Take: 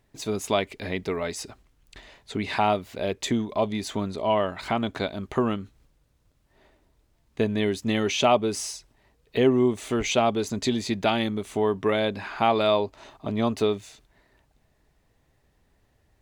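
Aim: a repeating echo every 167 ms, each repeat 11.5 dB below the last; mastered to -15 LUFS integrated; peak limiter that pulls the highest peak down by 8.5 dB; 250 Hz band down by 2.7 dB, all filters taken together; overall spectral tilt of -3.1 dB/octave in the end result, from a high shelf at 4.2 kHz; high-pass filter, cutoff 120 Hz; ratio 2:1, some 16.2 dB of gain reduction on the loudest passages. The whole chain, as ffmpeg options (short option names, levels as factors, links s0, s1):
-af "highpass=120,equalizer=f=250:t=o:g=-3,highshelf=f=4200:g=7,acompressor=threshold=0.00447:ratio=2,alimiter=level_in=1.78:limit=0.0631:level=0:latency=1,volume=0.562,aecho=1:1:167|334|501:0.266|0.0718|0.0194,volume=21.1"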